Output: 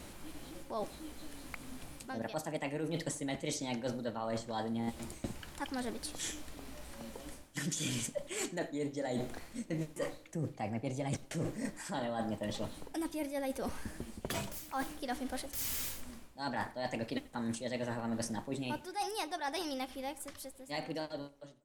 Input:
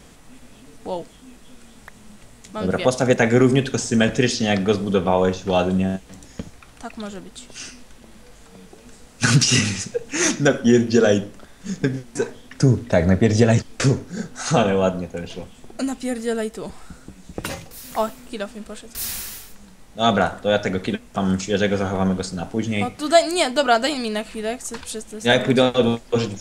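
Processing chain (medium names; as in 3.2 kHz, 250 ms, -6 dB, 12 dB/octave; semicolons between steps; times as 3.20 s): fade out at the end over 7.08 s; reverse; compression 16:1, threshold -31 dBFS, peak gain reduction 22 dB; reverse; tape speed +22%; tape echo 91 ms, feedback 40%, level -19.5 dB, low-pass 2.7 kHz; trim -2.5 dB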